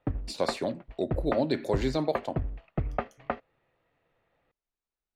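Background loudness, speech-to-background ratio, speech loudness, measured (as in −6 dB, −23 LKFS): −36.0 LKFS, 5.0 dB, −31.0 LKFS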